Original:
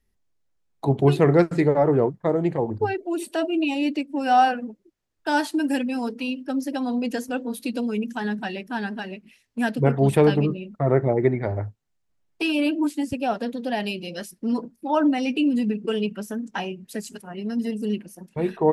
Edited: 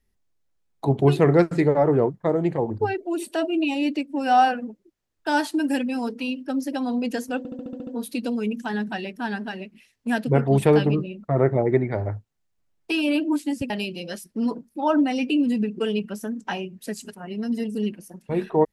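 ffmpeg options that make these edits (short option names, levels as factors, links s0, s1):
-filter_complex "[0:a]asplit=9[s0][s1][s2][s3][s4][s5][s6][s7][s8];[s0]atrim=end=7.452[s9];[s1]atrim=start=7.378:end=7.452[s10];[s2]atrim=start=7.378:end=7.452[s11];[s3]atrim=start=7.378:end=7.452[s12];[s4]atrim=start=7.378:end=7.452[s13];[s5]atrim=start=7.378:end=7.452[s14];[s6]atrim=start=7.378:end=7.452[s15];[s7]atrim=start=7.378:end=13.212[s16];[s8]atrim=start=13.768[s17];[s9][s10]acrossfade=d=0.004:c1=hsin:c2=hsin[s18];[s18][s11]acrossfade=d=0.004:c1=hsin:c2=hsin[s19];[s19][s12]acrossfade=d=0.004:c1=hsin:c2=hsin[s20];[s20][s13]acrossfade=d=0.004:c1=hsin:c2=hsin[s21];[s21][s14]acrossfade=d=0.004:c1=hsin:c2=hsin[s22];[s22][s15]acrossfade=d=0.004:c1=hsin:c2=hsin[s23];[s23][s16]acrossfade=d=0.004:c1=hsin:c2=hsin[s24];[s24][s17]acrossfade=d=0.004:c1=hsin:c2=hsin"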